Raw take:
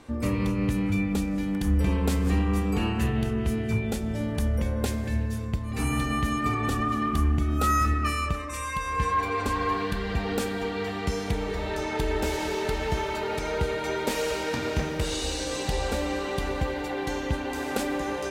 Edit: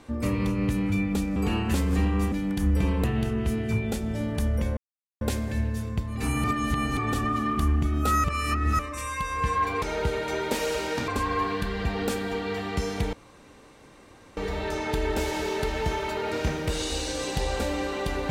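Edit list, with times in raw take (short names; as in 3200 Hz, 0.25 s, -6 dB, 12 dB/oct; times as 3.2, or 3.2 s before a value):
1.36–2.08 swap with 2.66–3.04
4.77 insert silence 0.44 s
6–6.53 reverse
7.8–8.35 reverse
11.43 insert room tone 1.24 s
13.38–14.64 move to 9.38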